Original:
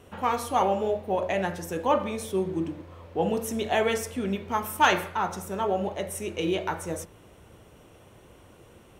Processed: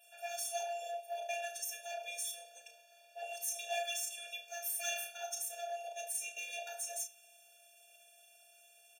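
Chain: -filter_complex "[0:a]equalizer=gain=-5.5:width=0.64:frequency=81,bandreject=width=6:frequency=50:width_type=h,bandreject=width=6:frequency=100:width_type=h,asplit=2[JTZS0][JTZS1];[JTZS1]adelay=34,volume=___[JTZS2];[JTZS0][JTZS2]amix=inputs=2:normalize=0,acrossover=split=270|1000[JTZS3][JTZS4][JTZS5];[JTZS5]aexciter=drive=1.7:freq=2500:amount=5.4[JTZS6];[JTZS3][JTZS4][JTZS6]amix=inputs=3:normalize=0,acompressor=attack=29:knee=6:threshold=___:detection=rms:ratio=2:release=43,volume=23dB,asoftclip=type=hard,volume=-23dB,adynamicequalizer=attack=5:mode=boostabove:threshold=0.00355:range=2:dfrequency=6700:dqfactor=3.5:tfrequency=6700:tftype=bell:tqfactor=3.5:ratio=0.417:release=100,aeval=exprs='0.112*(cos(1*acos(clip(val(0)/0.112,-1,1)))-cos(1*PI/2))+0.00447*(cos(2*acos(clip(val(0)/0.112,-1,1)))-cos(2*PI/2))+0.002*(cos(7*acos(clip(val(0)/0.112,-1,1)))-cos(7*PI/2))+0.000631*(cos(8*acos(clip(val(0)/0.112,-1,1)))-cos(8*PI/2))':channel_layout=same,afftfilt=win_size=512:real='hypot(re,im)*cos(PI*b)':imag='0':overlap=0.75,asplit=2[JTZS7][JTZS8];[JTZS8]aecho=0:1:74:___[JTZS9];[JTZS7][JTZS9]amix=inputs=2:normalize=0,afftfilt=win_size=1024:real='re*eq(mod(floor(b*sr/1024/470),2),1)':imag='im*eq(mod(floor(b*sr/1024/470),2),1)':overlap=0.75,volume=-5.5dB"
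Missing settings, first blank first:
-9dB, -28dB, 0.0794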